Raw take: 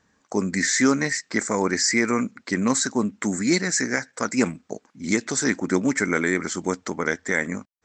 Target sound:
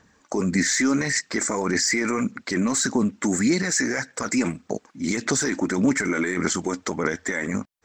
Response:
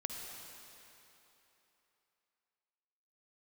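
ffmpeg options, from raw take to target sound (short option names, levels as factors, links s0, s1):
-af "alimiter=limit=0.106:level=0:latency=1:release=20,aphaser=in_gain=1:out_gain=1:delay=3.5:decay=0.37:speed=1.7:type=sinusoidal,volume=1.78"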